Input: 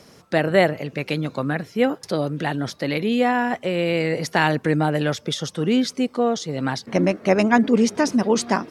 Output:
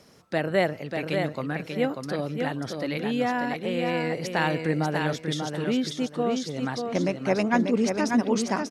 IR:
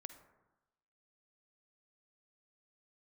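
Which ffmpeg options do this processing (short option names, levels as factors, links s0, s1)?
-af "aecho=1:1:590|1180|1770:0.562|0.124|0.0272,volume=0.473"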